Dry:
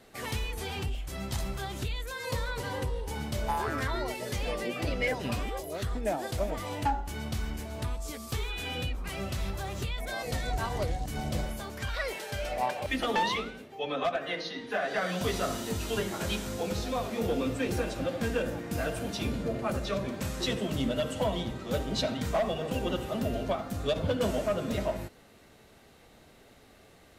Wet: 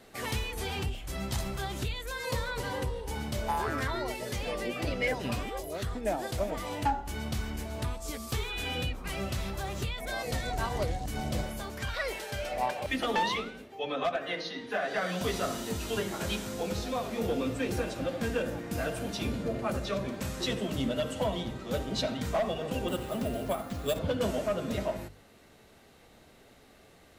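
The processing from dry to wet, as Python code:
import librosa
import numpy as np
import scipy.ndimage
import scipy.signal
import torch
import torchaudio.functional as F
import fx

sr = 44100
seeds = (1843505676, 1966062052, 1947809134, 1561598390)

p1 = fx.hum_notches(x, sr, base_hz=50, count=3)
p2 = fx.rider(p1, sr, range_db=10, speed_s=2.0)
p3 = p1 + (p2 * librosa.db_to_amplitude(0.0))
p4 = fx.resample_bad(p3, sr, factor=4, down='none', up='hold', at=(22.88, 23.99))
y = p4 * librosa.db_to_amplitude(-6.5)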